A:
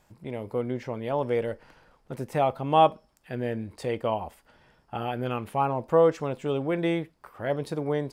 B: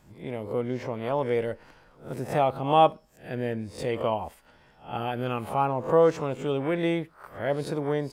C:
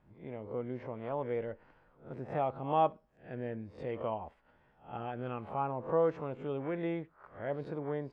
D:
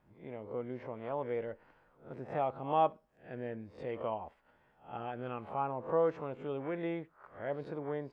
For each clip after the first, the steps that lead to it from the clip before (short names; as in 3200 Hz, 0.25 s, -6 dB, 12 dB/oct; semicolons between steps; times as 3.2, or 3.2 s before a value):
spectral swells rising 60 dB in 0.35 s
LPF 2100 Hz 12 dB/oct; gain -9 dB
low shelf 210 Hz -5.5 dB